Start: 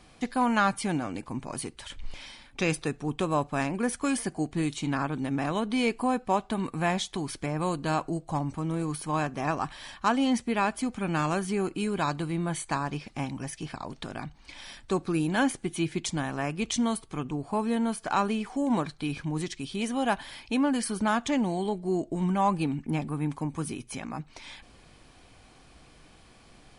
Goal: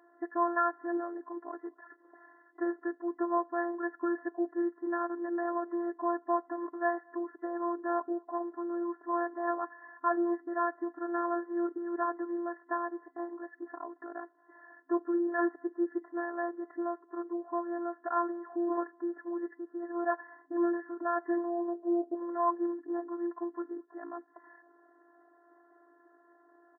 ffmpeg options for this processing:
ffmpeg -i in.wav -filter_complex "[0:a]afftfilt=real='hypot(re,im)*cos(PI*b)':imag='0':win_size=512:overlap=0.75,asplit=2[link_01][link_02];[link_02]adelay=227.4,volume=-29dB,highshelf=frequency=4000:gain=-5.12[link_03];[link_01][link_03]amix=inputs=2:normalize=0,afftfilt=real='re*between(b*sr/4096,270,2000)':imag='im*between(b*sr/4096,270,2000)':win_size=4096:overlap=0.75" out.wav

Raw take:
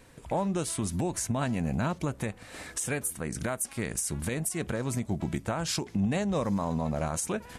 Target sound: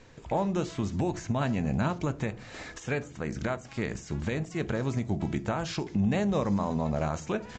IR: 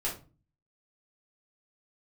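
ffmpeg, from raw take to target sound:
-filter_complex "[0:a]asplit=2[link_01][link_02];[link_02]lowshelf=frequency=390:gain=12[link_03];[1:a]atrim=start_sample=2205,lowshelf=frequency=150:gain=-11[link_04];[link_03][link_04]afir=irnorm=-1:irlink=0,volume=-18dB[link_05];[link_01][link_05]amix=inputs=2:normalize=0,acrossover=split=3500[link_06][link_07];[link_07]acompressor=threshold=-41dB:ratio=4:attack=1:release=60[link_08];[link_06][link_08]amix=inputs=2:normalize=0,aresample=16000,aresample=44100"

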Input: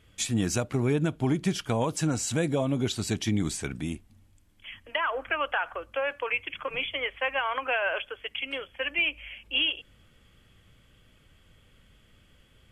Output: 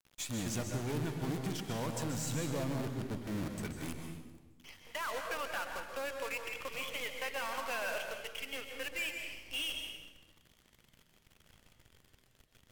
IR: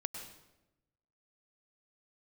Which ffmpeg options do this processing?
-filter_complex "[0:a]asettb=1/sr,asplit=3[link_01][link_02][link_03];[link_01]atrim=end=2.474[link_04];[link_02]atrim=start=2.47:end=3.58,asetpts=PTS-STARTPTS,afade=type=in:duration=0.004:curve=qsin,afade=type=out:start_time=1.106:duration=0.004:curve=qsin,lowpass=frequency=1600:width=0.5412,lowpass=frequency=1600:width=1.3066[link_05];[link_03]atrim=start=3.576[link_06];[link_04][link_05]acrossfade=duration=0.004:curve1=hsin:curve2=qsin[link_07];[link_07][link_06]acrossfade=duration=0.004:curve1=qsin:curve2=hsin,acrusher=bits=6:dc=4:mix=0:aa=0.000001,asoftclip=type=tanh:threshold=-27.5dB[link_08];[1:a]atrim=start_sample=2205,asetrate=33516,aresample=44100[link_09];[link_08][link_09]afir=irnorm=-1:irlink=0,volume=-6dB"

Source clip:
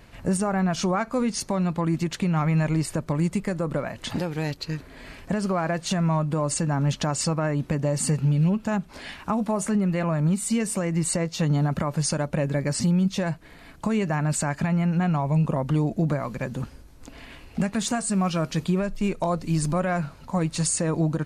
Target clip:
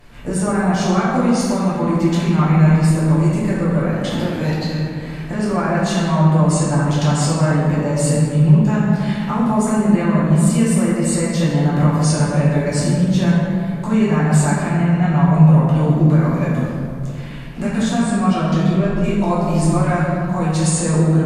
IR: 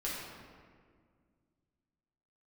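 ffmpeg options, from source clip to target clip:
-filter_complex "[0:a]asettb=1/sr,asplit=3[link_01][link_02][link_03];[link_01]atrim=end=17.824[link_04];[link_02]atrim=start=17.82:end=19.04,asetpts=PTS-STARTPTS,afade=type=in:duration=0.004:curve=qsin,afade=type=out:start_time=1.216:duration=0.004:curve=qsin,highshelf=frequency=6800:gain=-11[link_05];[link_03]atrim=start=19.036[link_06];[link_04][link_05]acrossfade=duration=0.004:curve1=hsin:curve2=qsin[link_07];[link_07][link_06]acrossfade=duration=0.004:curve1=qsin:curve2=hsin[link_08];[1:a]atrim=start_sample=2205,asetrate=33516,aresample=44100[link_09];[link_08][link_09]afir=irnorm=-1:irlink=0,volume=1.5dB"

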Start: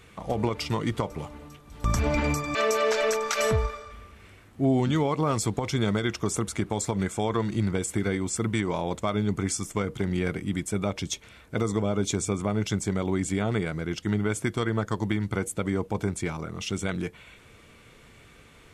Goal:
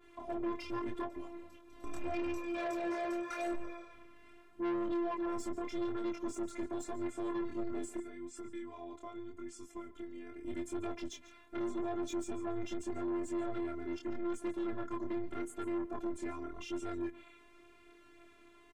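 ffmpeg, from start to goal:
ffmpeg -i in.wav -filter_complex "[0:a]highpass=frequency=82:width=0.5412,highpass=frequency=82:width=1.3066,highshelf=frequency=2700:gain=-11,asettb=1/sr,asplit=3[link_01][link_02][link_03];[link_01]atrim=end=7.974[link_04];[link_02]atrim=start=7.97:end=10.45,asetpts=PTS-STARTPTS,afade=type=in:duration=0.004:curve=qsin,afade=type=out:start_time=2.476:duration=0.004:curve=qsin,acompressor=threshold=-37dB:ratio=6[link_05];[link_03]atrim=start=10.446[link_06];[link_04][link_05]acrossfade=duration=0.004:curve1=hsin:curve2=qsin[link_07];[link_07][link_06]acrossfade=duration=0.004:curve1=qsin:curve2=hsin,afftfilt=real='hypot(re,im)*cos(PI*b)':imag='0':win_size=512:overlap=0.75,flanger=delay=22.5:depth=4.7:speed=0.83,asoftclip=type=tanh:threshold=-34dB,aecho=1:1:143:0.126,adynamicequalizer=threshold=0.002:dfrequency=2100:dqfactor=0.7:tfrequency=2100:tqfactor=0.7:attack=5:release=100:ratio=0.375:range=2:mode=cutabove:tftype=highshelf,volume=2dB" out.wav

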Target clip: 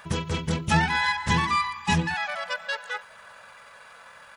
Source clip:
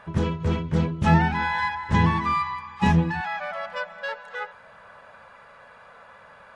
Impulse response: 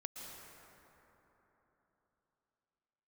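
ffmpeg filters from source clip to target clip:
-af "atempo=1.5,crystalizer=i=8:c=0,volume=-4.5dB"

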